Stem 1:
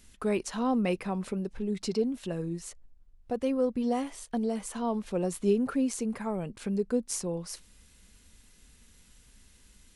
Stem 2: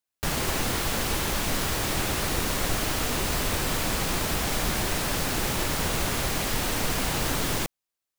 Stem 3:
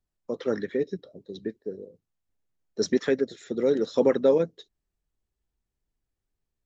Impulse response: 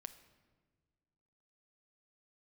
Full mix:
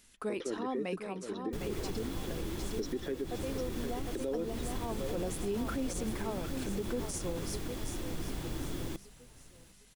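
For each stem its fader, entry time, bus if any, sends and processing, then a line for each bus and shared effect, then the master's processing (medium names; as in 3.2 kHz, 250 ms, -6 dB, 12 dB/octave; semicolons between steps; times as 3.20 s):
-1.5 dB, 0.00 s, no bus, no send, echo send -11 dB, bass shelf 220 Hz -10.5 dB; auto duck -6 dB, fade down 1.10 s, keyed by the third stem
-19.0 dB, 1.30 s, bus A, no send, echo send -20 dB, bass shelf 280 Hz +12 dB
-7.0 dB, 0.00 s, muted 3.38–4.15 s, bus A, no send, echo send -13 dB, none
bus A: 0.0 dB, small resonant body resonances 330/3400 Hz, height 11 dB, ringing for 35 ms; compression, threshold -29 dBFS, peak gain reduction 10.5 dB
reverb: none
echo: feedback delay 757 ms, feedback 38%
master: peak limiter -26 dBFS, peak gain reduction 9 dB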